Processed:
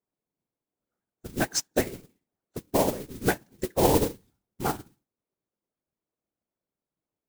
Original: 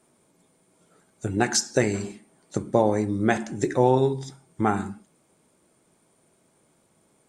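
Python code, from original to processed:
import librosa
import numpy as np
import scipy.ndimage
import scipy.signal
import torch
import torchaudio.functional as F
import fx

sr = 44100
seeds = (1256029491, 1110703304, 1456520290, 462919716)

y = fx.wiener(x, sr, points=9)
y = fx.whisperise(y, sr, seeds[0])
y = fx.mod_noise(y, sr, seeds[1], snr_db=10)
y = fx.upward_expand(y, sr, threshold_db=-34.0, expansion=2.5)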